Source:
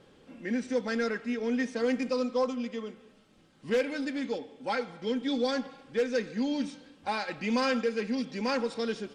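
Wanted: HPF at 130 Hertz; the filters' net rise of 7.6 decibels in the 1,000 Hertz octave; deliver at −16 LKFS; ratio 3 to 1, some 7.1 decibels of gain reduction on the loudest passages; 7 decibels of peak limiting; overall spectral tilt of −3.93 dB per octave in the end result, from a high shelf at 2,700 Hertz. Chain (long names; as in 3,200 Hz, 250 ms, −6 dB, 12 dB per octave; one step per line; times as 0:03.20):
high-pass filter 130 Hz
parametric band 1,000 Hz +8.5 dB
high-shelf EQ 2,700 Hz +7.5 dB
downward compressor 3 to 1, threshold −29 dBFS
level +19.5 dB
brickwall limiter −5.5 dBFS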